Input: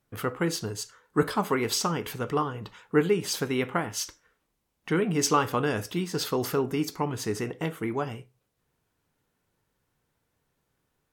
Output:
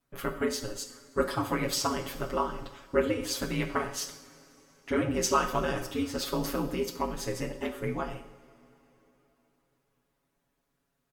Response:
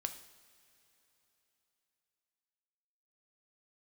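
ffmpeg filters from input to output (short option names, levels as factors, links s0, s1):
-filter_complex "[0:a]aeval=exprs='val(0)*sin(2*PI*97*n/s)':c=same,aecho=1:1:7.2:0.98[s0];[1:a]atrim=start_sample=2205[s1];[s0][s1]afir=irnorm=-1:irlink=0,volume=0.794"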